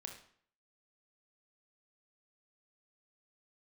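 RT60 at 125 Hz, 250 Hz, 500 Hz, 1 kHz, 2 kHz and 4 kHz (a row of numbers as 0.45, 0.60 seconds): 0.60, 0.60, 0.55, 0.55, 0.55, 0.50 seconds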